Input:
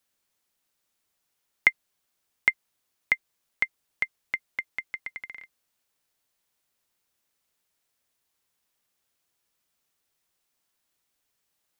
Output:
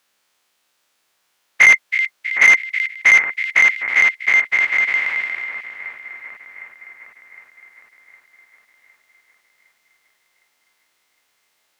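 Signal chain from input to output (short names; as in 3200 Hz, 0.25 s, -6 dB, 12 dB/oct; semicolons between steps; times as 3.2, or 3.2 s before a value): spectral dilation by 0.12 s; split-band echo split 2000 Hz, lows 0.76 s, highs 0.322 s, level -12.5 dB; overdrive pedal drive 16 dB, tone 3600 Hz, clips at -1.5 dBFS; gain +1 dB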